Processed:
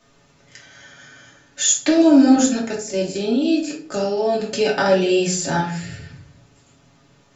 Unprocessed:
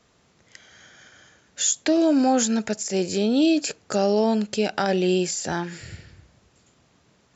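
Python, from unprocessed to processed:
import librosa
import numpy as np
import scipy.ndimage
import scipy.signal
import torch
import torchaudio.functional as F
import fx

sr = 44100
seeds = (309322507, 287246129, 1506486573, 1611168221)

y = x + 0.65 * np.pad(x, (int(7.2 * sr / 1000.0), 0))[:len(x)]
y = fx.level_steps(y, sr, step_db=12, at=(2.36, 4.4))
y = fx.room_shoebox(y, sr, seeds[0], volume_m3=450.0, walls='furnished', distance_m=2.6)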